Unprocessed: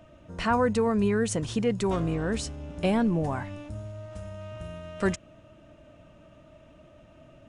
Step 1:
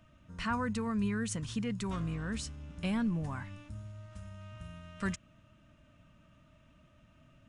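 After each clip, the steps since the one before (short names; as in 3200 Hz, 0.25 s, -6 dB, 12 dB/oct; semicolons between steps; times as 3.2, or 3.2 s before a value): band shelf 510 Hz -10 dB; gain -6 dB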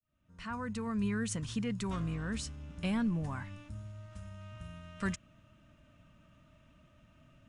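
opening faded in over 1.13 s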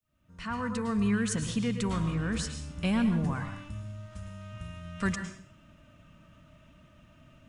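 plate-style reverb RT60 0.54 s, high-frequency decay 0.95×, pre-delay 95 ms, DRR 7 dB; gain +5 dB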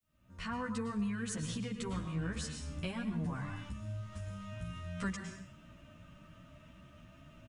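compressor 2.5:1, threshold -39 dBFS, peak gain reduction 11 dB; endless flanger 11.4 ms +2.9 Hz; gain +3.5 dB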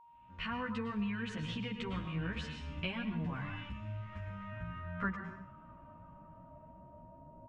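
low-pass sweep 2800 Hz -> 570 Hz, 3.55–7.33; whine 940 Hz -56 dBFS; gain -1 dB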